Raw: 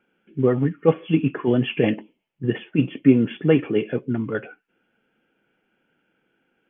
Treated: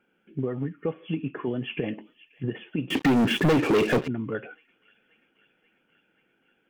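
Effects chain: on a send: feedback echo behind a high-pass 534 ms, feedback 69%, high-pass 2.2 kHz, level -23.5 dB; on the sum: compression 6:1, threshold -25 dBFS, peak gain reduction 15.5 dB; 2.90–4.08 s: waveshaping leveller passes 5; trim -1 dB

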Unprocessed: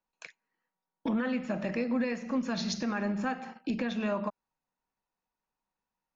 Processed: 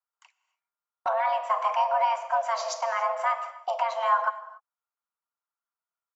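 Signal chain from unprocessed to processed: frequency shift +450 Hz; graphic EQ 125/250/500/1000/2000/4000 Hz -11/-11/-11/+10/-4/-7 dB; gate -40 dBFS, range -13 dB; harmony voices -4 st -13 dB; on a send: reverberation, pre-delay 52 ms, DRR 15.5 dB; on the sum: trim +4.5 dB

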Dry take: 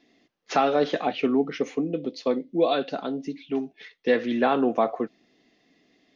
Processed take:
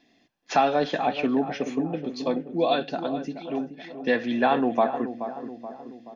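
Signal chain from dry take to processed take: comb 1.2 ms, depth 38%; on a send: filtered feedback delay 428 ms, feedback 57%, low-pass 1.2 kHz, level -9.5 dB

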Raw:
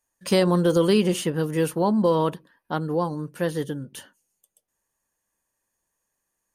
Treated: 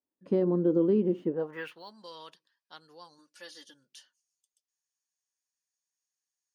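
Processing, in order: treble shelf 11 kHz -11 dB; 3.18–3.74 s: comb 3.5 ms, depth 86%; dynamic bell 8 kHz, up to -4 dB, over -49 dBFS, Q 0.94; band-pass sweep 300 Hz -> 5.2 kHz, 1.27–1.84 s; 0.67–1.91 s: decimation joined by straight lines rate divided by 2×

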